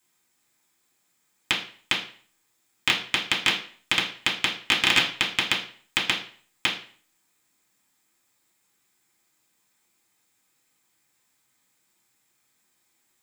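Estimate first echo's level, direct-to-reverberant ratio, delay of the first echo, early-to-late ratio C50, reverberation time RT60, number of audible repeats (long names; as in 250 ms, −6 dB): no echo audible, −4.5 dB, no echo audible, 9.5 dB, 0.45 s, no echo audible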